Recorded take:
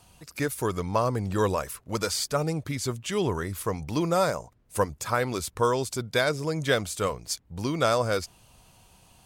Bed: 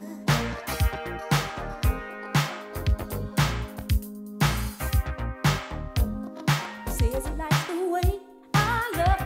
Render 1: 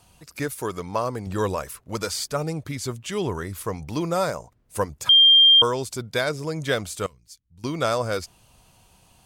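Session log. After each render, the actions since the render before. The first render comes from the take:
0:00.54–0:01.27: low-shelf EQ 120 Hz −10 dB
0:05.09–0:05.62: beep over 3,190 Hz −10 dBFS
0:07.06–0:07.64: guitar amp tone stack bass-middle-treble 6-0-2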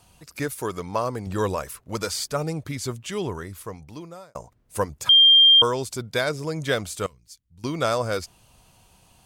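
0:02.92–0:04.35: fade out linear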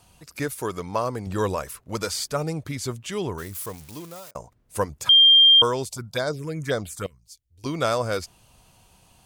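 0:03.38–0:04.31: spike at every zero crossing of −31.5 dBFS
0:05.85–0:07.66: phaser swept by the level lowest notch 160 Hz, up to 2,700 Hz, full sweep at −19.5 dBFS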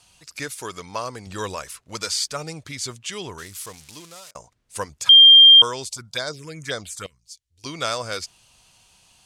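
low-pass filter 7,800 Hz 12 dB per octave
tilt shelving filter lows −7.5 dB, about 1,500 Hz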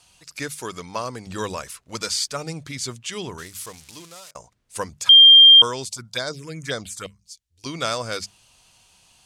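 mains-hum notches 50/100/150/200 Hz
dynamic equaliser 190 Hz, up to +5 dB, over −44 dBFS, Q 0.88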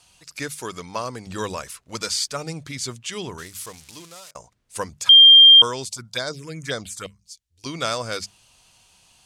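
no processing that can be heard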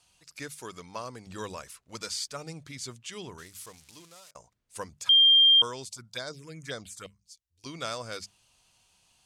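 level −9.5 dB

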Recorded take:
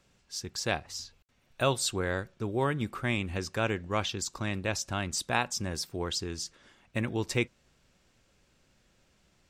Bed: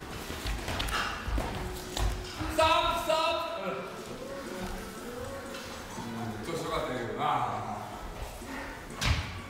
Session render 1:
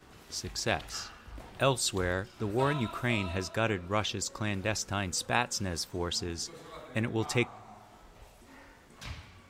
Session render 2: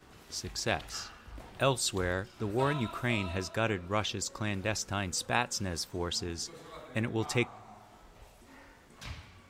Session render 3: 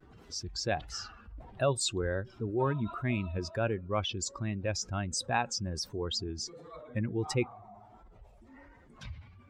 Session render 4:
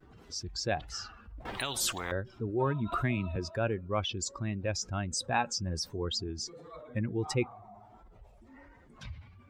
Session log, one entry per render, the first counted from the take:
mix in bed −14.5 dB
level −1 dB
expanding power law on the bin magnitudes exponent 1.8; pitch vibrato 1.4 Hz 57 cents
0:01.45–0:02.12: every bin compressed towards the loudest bin 10 to 1; 0:02.92–0:03.36: multiband upward and downward compressor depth 100%; 0:05.32–0:06.09: double-tracking delay 12 ms −9 dB

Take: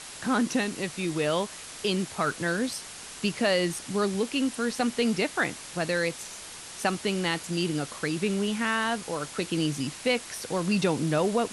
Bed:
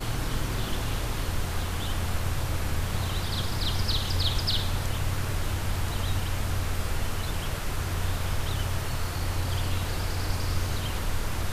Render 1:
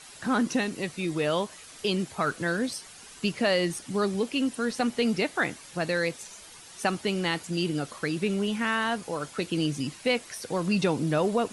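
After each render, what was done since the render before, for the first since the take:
broadband denoise 9 dB, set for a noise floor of −43 dBFS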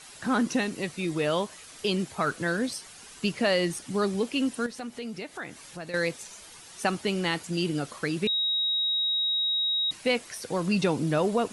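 0:04.66–0:05.94: downward compressor 2 to 1, threshold −42 dBFS
0:08.27–0:09.91: beep over 3,800 Hz −23.5 dBFS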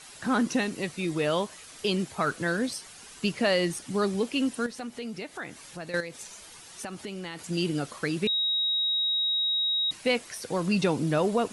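0:06.00–0:07.39: downward compressor 5 to 1, threshold −34 dBFS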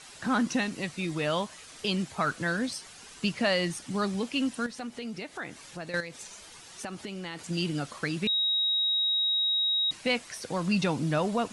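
low-pass filter 9,100 Hz 12 dB per octave
dynamic equaliser 410 Hz, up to −7 dB, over −41 dBFS, Q 1.9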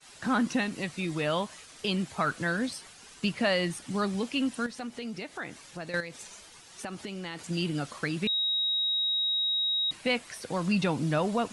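downward expander −45 dBFS
dynamic equaliser 5,900 Hz, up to −5 dB, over −46 dBFS, Q 1.6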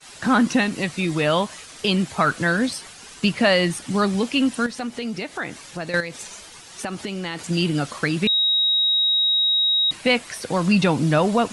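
level +9 dB

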